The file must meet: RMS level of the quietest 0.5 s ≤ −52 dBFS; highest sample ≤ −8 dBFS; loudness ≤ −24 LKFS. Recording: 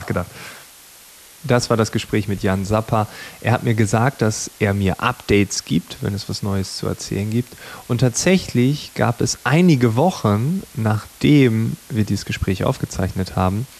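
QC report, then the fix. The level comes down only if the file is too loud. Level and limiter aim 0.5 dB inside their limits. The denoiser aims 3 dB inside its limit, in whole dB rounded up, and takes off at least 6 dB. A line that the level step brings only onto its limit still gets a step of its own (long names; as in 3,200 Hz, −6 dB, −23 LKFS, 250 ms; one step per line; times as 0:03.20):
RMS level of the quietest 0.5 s −44 dBFS: out of spec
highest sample −3.5 dBFS: out of spec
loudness −19.5 LKFS: out of spec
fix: broadband denoise 6 dB, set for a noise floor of −44 dBFS
level −5 dB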